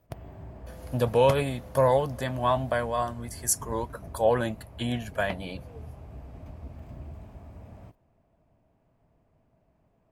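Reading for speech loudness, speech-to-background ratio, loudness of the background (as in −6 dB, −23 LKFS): −27.0 LKFS, 18.0 dB, −45.0 LKFS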